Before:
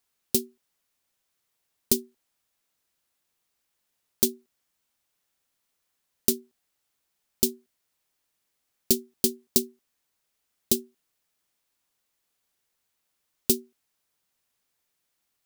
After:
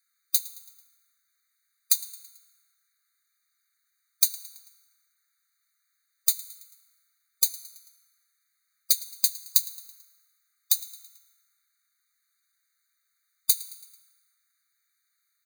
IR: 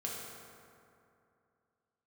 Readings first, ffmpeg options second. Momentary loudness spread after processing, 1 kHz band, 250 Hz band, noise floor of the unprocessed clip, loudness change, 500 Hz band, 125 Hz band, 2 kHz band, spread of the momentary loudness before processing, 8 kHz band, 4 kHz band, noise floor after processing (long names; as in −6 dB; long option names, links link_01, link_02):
17 LU, can't be measured, below −40 dB, −78 dBFS, +1.5 dB, below −40 dB, below −40 dB, +0.5 dB, 2 LU, +2.5 dB, +2.0 dB, −76 dBFS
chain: -filter_complex "[0:a]aecho=1:1:110|220|330|440:0.0944|0.051|0.0275|0.0149,asplit=2[link_01][link_02];[1:a]atrim=start_sample=2205[link_03];[link_02][link_03]afir=irnorm=-1:irlink=0,volume=-12.5dB[link_04];[link_01][link_04]amix=inputs=2:normalize=0,afftfilt=real='re*eq(mod(floor(b*sr/1024/1200),2),1)':imag='im*eq(mod(floor(b*sr/1024/1200),2),1)':win_size=1024:overlap=0.75,volume=4dB"